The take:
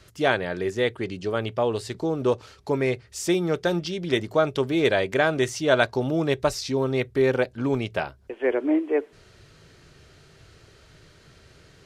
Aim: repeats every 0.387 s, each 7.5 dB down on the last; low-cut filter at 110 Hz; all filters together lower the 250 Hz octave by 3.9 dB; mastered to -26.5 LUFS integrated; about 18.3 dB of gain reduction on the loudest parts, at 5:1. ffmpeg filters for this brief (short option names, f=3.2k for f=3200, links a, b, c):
-af "highpass=110,equalizer=f=250:t=o:g=-5.5,acompressor=threshold=-37dB:ratio=5,aecho=1:1:387|774|1161|1548|1935:0.422|0.177|0.0744|0.0312|0.0131,volume=12.5dB"